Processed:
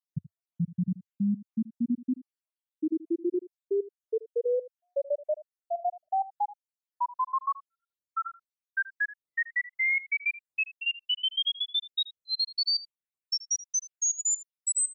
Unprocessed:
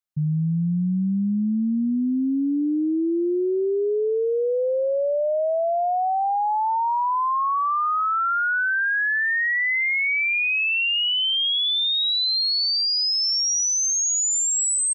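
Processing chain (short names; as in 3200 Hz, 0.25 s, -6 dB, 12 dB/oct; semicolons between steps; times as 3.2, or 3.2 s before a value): random spectral dropouts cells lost 75%; bell 97 Hz +3 dB 0.55 oct; echo 80 ms -17.5 dB; gain -3 dB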